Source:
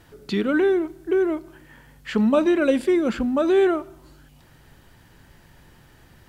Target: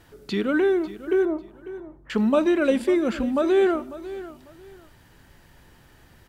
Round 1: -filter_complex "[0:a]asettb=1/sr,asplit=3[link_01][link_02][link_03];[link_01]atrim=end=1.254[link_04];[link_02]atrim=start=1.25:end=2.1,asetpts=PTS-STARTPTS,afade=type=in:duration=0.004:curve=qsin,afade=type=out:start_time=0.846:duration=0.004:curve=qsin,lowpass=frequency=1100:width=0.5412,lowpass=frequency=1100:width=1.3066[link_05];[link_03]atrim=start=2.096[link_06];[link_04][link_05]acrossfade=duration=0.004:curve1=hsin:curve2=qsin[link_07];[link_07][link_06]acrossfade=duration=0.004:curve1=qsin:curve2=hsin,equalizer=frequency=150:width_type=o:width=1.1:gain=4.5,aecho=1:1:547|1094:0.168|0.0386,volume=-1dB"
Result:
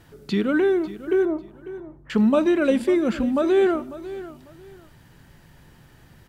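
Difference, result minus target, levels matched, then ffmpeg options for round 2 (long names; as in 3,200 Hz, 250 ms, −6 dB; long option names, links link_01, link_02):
125 Hz band +3.0 dB
-filter_complex "[0:a]asettb=1/sr,asplit=3[link_01][link_02][link_03];[link_01]atrim=end=1.254[link_04];[link_02]atrim=start=1.25:end=2.1,asetpts=PTS-STARTPTS,afade=type=in:duration=0.004:curve=qsin,afade=type=out:start_time=0.846:duration=0.004:curve=qsin,lowpass=frequency=1100:width=0.5412,lowpass=frequency=1100:width=1.3066[link_05];[link_03]atrim=start=2.096[link_06];[link_04][link_05]acrossfade=duration=0.004:curve1=hsin:curve2=qsin[link_07];[link_07][link_06]acrossfade=duration=0.004:curve1=qsin:curve2=hsin,equalizer=frequency=150:width_type=o:width=1.1:gain=-2.5,aecho=1:1:547|1094:0.168|0.0386,volume=-1dB"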